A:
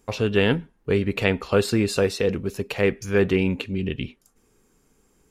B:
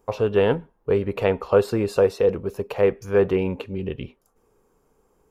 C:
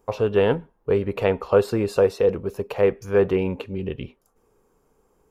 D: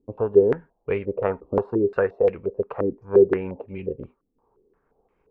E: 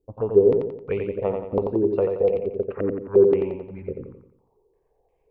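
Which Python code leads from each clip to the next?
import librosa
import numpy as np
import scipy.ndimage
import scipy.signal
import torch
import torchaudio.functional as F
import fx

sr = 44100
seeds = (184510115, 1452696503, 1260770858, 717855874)

y1 = fx.graphic_eq(x, sr, hz=(250, 500, 1000, 2000, 4000, 8000), db=(-4, 7, 7, -5, -5, -7))
y1 = y1 * 10.0 ** (-2.5 / 20.0)
y2 = y1
y3 = fx.transient(y2, sr, attack_db=3, sustain_db=-2)
y3 = fx.filter_held_lowpass(y3, sr, hz=5.7, low_hz=290.0, high_hz=2300.0)
y3 = y3 * 10.0 ** (-6.5 / 20.0)
y4 = fx.env_phaser(y3, sr, low_hz=230.0, high_hz=1600.0, full_db=-21.5)
y4 = fx.echo_feedback(y4, sr, ms=88, feedback_pct=45, wet_db=-5.0)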